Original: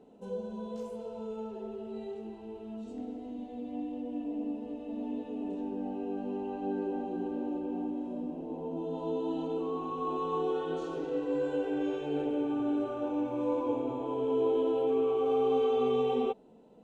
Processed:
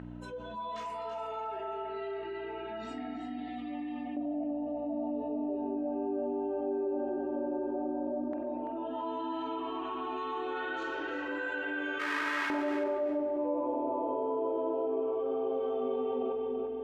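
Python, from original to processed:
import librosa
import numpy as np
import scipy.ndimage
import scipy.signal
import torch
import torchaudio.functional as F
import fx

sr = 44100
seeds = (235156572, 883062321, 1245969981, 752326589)

y = fx.halfwave_hold(x, sr, at=(11.99, 12.59), fade=0.02)
y = fx.noise_reduce_blind(y, sr, reduce_db=19)
y = y + 0.74 * np.pad(y, (int(3.2 * sr / 1000.0), 0))[:len(y)]
y = fx.add_hum(y, sr, base_hz=60, snr_db=16)
y = fx.filter_lfo_bandpass(y, sr, shape='square', hz=0.12, low_hz=590.0, high_hz=1700.0, q=2.4)
y = fx.echo_feedback(y, sr, ms=336, feedback_pct=19, wet_db=-8)
y = fx.rev_spring(y, sr, rt60_s=1.6, pass_ms=(43,), chirp_ms=55, drr_db=8.5)
y = fx.env_flatten(y, sr, amount_pct=70)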